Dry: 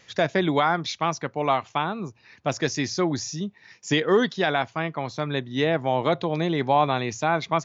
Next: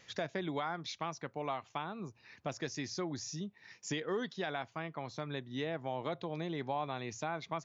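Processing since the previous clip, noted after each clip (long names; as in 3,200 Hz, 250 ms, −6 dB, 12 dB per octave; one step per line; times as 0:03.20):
downward compressor 2 to 1, threshold −36 dBFS, peak gain reduction 11.5 dB
level −5.5 dB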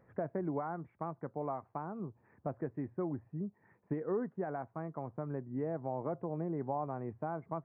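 Gaussian smoothing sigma 7.4 samples
level +2.5 dB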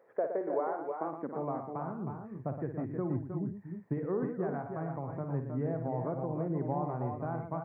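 high-pass filter sweep 470 Hz → 100 Hz, 0:00.80–0:01.85
on a send: multi-tap delay 56/117/314/337 ms −8.5/−8.5/−6.5/−10 dB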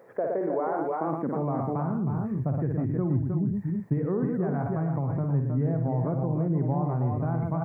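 bass and treble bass +10 dB, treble +4 dB
in parallel at 0 dB: compressor whose output falls as the input rises −37 dBFS, ratio −1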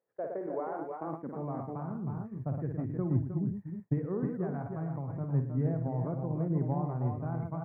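downward expander −20 dBFS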